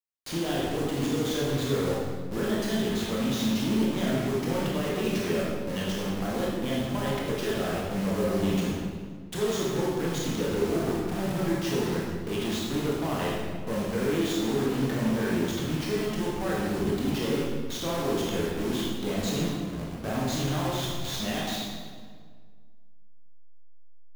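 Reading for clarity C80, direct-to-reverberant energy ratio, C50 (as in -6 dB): 1.5 dB, -5.5 dB, -1.0 dB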